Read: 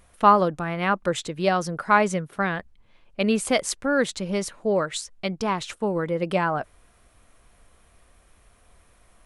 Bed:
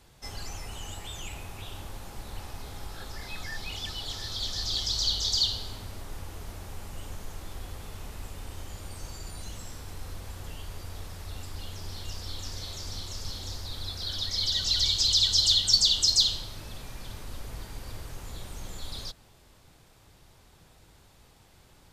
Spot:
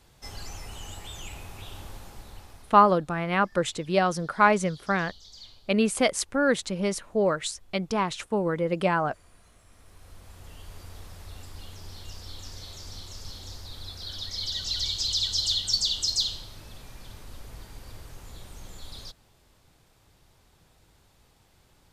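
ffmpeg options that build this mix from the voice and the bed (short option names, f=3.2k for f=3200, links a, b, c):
-filter_complex "[0:a]adelay=2500,volume=-1dB[a];[1:a]volume=17dB,afade=t=out:st=1.9:d=0.96:silence=0.0891251,afade=t=in:st=9.67:d=1.13:silence=0.125893[b];[a][b]amix=inputs=2:normalize=0"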